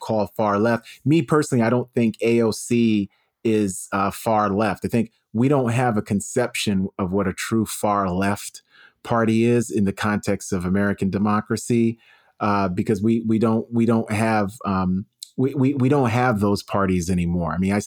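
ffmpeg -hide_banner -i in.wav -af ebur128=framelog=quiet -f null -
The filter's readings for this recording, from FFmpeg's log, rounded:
Integrated loudness:
  I:         -21.4 LUFS
  Threshold: -31.5 LUFS
Loudness range:
  LRA:         1.7 LU
  Threshold: -41.7 LUFS
  LRA low:   -22.4 LUFS
  LRA high:  -20.7 LUFS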